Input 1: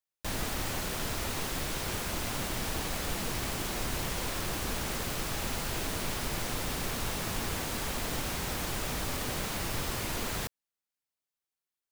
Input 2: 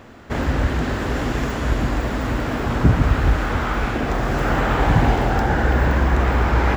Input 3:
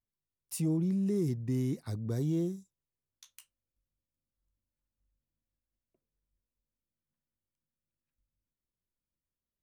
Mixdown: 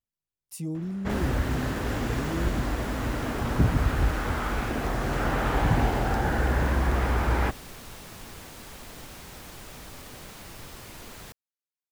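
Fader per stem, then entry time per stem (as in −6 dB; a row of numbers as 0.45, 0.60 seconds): −9.5, −7.0, −2.5 decibels; 0.85, 0.75, 0.00 seconds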